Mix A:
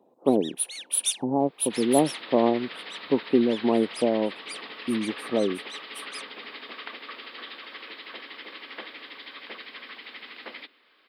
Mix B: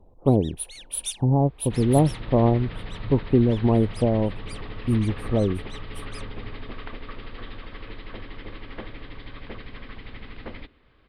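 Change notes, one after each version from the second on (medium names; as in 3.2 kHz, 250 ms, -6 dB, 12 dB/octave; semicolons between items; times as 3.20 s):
first sound -5.0 dB; second sound: add tilt EQ -4 dB/octave; master: remove high-pass 230 Hz 24 dB/octave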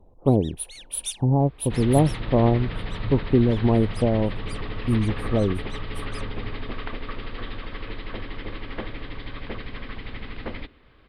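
second sound +4.5 dB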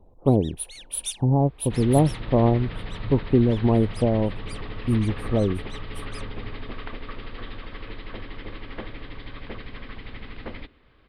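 second sound -3.0 dB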